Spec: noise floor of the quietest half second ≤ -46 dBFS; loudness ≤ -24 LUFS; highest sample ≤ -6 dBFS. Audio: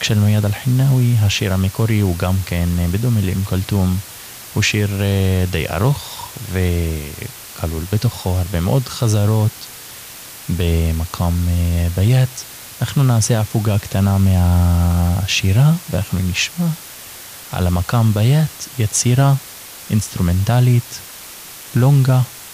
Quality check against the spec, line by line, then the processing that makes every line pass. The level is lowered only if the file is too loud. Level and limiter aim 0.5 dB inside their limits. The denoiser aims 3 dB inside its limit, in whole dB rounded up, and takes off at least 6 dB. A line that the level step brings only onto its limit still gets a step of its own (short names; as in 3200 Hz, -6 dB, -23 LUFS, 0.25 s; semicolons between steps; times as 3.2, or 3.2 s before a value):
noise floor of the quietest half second -35 dBFS: fail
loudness -17.0 LUFS: fail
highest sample -4.5 dBFS: fail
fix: denoiser 7 dB, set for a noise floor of -35 dBFS; gain -7.5 dB